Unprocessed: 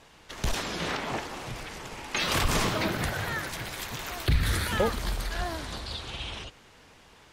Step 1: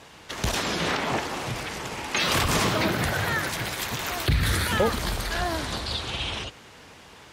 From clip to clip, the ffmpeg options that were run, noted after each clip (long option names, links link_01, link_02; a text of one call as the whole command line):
ffmpeg -i in.wav -filter_complex "[0:a]highpass=61,asplit=2[link_01][link_02];[link_02]alimiter=level_in=1dB:limit=-24dB:level=0:latency=1:release=98,volume=-1dB,volume=2dB[link_03];[link_01][link_03]amix=inputs=2:normalize=0" out.wav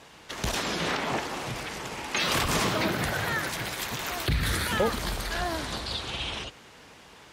ffmpeg -i in.wav -af "equalizer=frequency=91:width_type=o:width=0.67:gain=-4.5,volume=-2.5dB" out.wav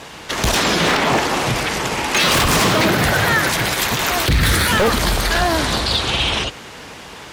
ffmpeg -i in.wav -filter_complex "[0:a]asplit=2[link_01][link_02];[link_02]alimiter=limit=-24dB:level=0:latency=1:release=34,volume=0dB[link_03];[link_01][link_03]amix=inputs=2:normalize=0,aeval=exprs='0.126*(abs(mod(val(0)/0.126+3,4)-2)-1)':channel_layout=same,volume=9dB" out.wav